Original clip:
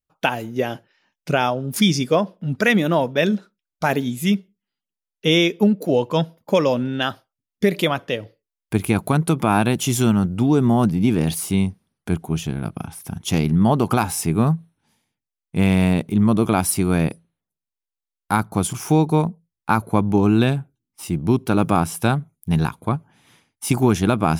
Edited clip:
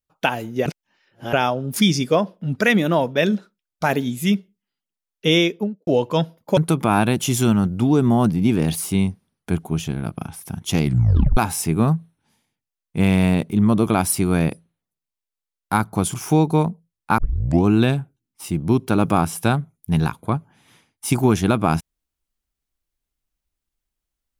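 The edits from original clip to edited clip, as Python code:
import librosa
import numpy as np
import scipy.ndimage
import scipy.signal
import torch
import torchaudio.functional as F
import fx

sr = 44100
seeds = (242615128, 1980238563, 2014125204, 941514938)

y = fx.studio_fade_out(x, sr, start_s=5.37, length_s=0.5)
y = fx.edit(y, sr, fx.reverse_span(start_s=0.66, length_s=0.67),
    fx.cut(start_s=6.57, length_s=2.59),
    fx.tape_stop(start_s=13.42, length_s=0.54),
    fx.tape_start(start_s=19.77, length_s=0.46), tone=tone)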